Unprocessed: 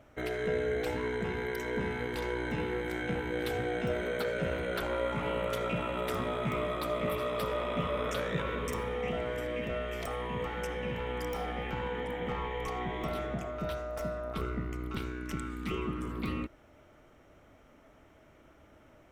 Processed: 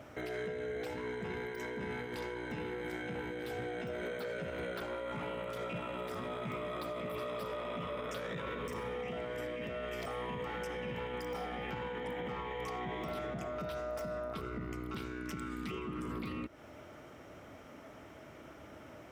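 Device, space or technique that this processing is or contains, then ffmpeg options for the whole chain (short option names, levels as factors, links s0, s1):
broadcast voice chain: -af "highpass=88,deesser=0.95,acompressor=threshold=0.00708:ratio=5,equalizer=f=5000:t=o:w=0.21:g=5,alimiter=level_in=5.62:limit=0.0631:level=0:latency=1:release=19,volume=0.178,volume=2.37"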